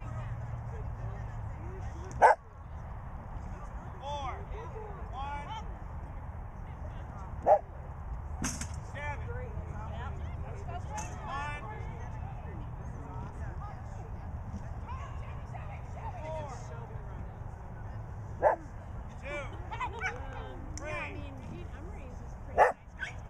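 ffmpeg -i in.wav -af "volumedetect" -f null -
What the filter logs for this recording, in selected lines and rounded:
mean_volume: -36.0 dB
max_volume: -10.4 dB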